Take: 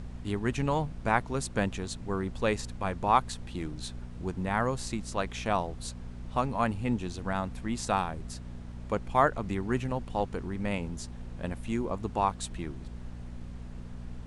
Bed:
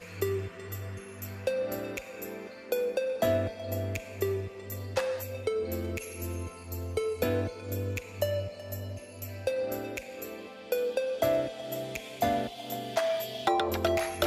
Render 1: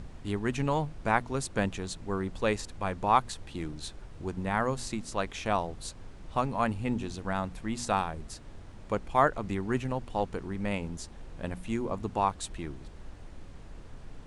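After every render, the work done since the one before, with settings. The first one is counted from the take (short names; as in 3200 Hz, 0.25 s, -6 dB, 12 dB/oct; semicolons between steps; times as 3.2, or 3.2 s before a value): de-hum 60 Hz, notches 4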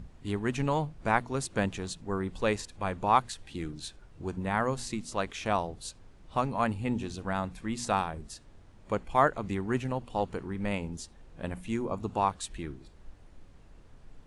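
noise print and reduce 8 dB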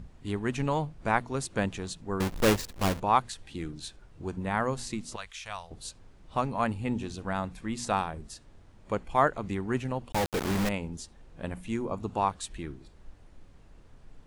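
2.2–3 half-waves squared off; 5.16–5.71 passive tone stack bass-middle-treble 10-0-10; 10.12–10.69 companded quantiser 2-bit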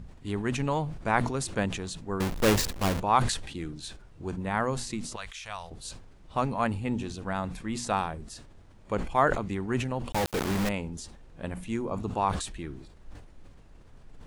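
sustainer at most 65 dB/s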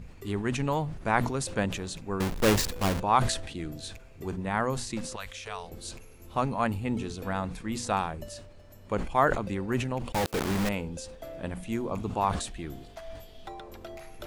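add bed -16 dB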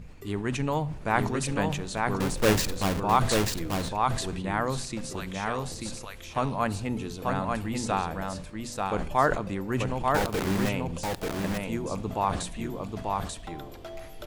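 echo 0.888 s -3 dB; shoebox room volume 3100 m³, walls furnished, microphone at 0.43 m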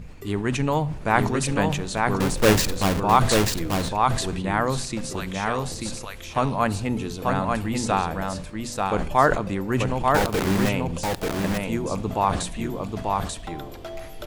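gain +5 dB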